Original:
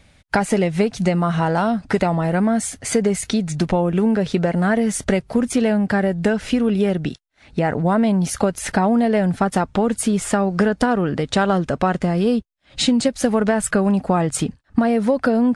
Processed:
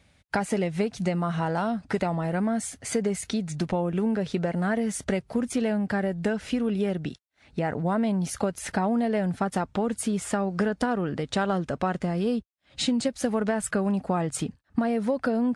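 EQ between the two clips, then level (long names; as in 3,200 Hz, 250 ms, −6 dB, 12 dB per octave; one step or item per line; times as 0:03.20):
high-pass filter 45 Hz
−8.0 dB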